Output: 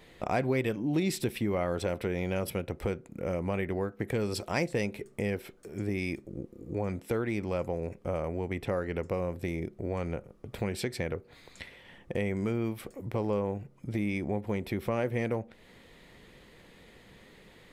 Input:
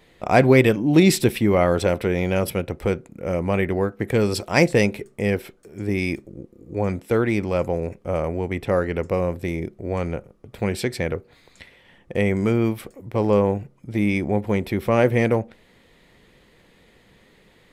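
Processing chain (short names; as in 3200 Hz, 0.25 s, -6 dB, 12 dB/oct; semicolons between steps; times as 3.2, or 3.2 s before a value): compressor 2.5:1, threshold -33 dBFS, peak gain reduction 15.5 dB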